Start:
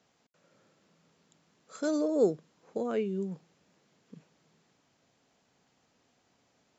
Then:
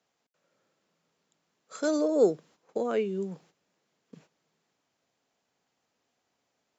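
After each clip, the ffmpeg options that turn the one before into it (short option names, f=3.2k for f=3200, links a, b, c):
-filter_complex "[0:a]agate=range=-11dB:threshold=-57dB:ratio=16:detection=peak,acrossover=split=320[a][b];[b]acontrast=61[c];[a][c]amix=inputs=2:normalize=0,volume=-2dB"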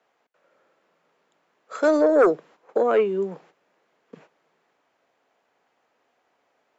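-filter_complex "[0:a]aeval=exprs='0.251*sin(PI/2*2*val(0)/0.251)':c=same,acrossover=split=330 2600:gain=0.2 1 0.178[a][b][c];[a][b][c]amix=inputs=3:normalize=0,volume=2dB"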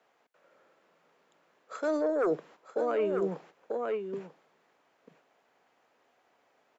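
-af "aecho=1:1:942:0.237,areverse,acompressor=threshold=-26dB:ratio=8,areverse"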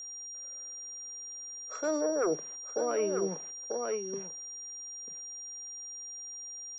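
-af "aeval=exprs='val(0)+0.0112*sin(2*PI*5700*n/s)':c=same,volume=-1.5dB"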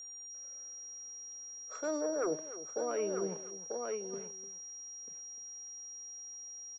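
-af "aecho=1:1:299:0.188,volume=-4.5dB"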